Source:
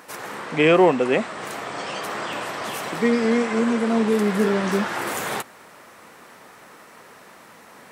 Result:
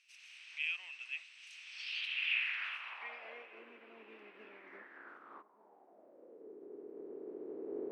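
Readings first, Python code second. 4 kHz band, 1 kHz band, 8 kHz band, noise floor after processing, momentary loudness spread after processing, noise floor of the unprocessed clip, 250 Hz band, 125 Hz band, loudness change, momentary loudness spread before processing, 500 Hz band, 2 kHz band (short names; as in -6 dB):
-10.0 dB, -28.5 dB, under -25 dB, -64 dBFS, 21 LU, -48 dBFS, -31.0 dB, under -40 dB, -18.0 dB, 14 LU, -26.5 dB, -12.0 dB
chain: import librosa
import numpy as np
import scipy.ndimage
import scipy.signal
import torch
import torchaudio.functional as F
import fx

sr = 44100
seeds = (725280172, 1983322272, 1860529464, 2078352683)

y = fx.spec_clip(x, sr, under_db=13)
y = fx.recorder_agc(y, sr, target_db=-12.5, rise_db_per_s=9.6, max_gain_db=30)
y = fx.peak_eq(y, sr, hz=280.0, db=2.5, octaves=0.77)
y = fx.notch(y, sr, hz=7000.0, q=5.2)
y = fx.filter_sweep_bandpass(y, sr, from_hz=6500.0, to_hz=320.0, start_s=1.65, end_s=3.7, q=2.6)
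y = fx.echo_filtered(y, sr, ms=1176, feedback_pct=47, hz=990.0, wet_db=-23.0)
y = fx.filter_sweep_bandpass(y, sr, from_hz=2600.0, to_hz=420.0, start_s=4.48, end_s=6.5, q=6.6)
y = y * librosa.db_to_amplitude(1.5)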